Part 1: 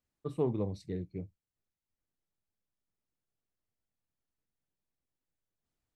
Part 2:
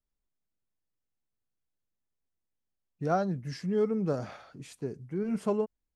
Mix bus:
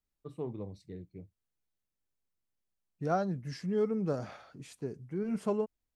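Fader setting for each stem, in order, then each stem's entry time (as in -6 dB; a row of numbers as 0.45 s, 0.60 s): -7.5 dB, -2.5 dB; 0.00 s, 0.00 s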